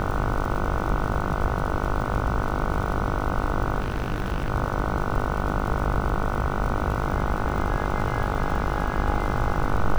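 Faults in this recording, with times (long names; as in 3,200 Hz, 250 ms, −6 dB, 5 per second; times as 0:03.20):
mains buzz 50 Hz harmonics 30 −29 dBFS
surface crackle 69 per second −31 dBFS
0:03.80–0:04.51: clipping −20.5 dBFS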